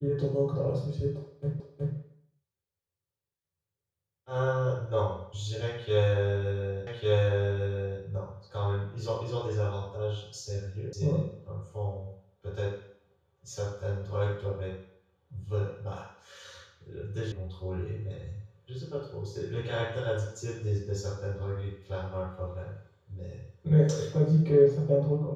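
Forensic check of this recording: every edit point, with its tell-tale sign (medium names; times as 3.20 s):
1.60 s: repeat of the last 0.37 s
6.87 s: repeat of the last 1.15 s
10.93 s: sound stops dead
17.32 s: sound stops dead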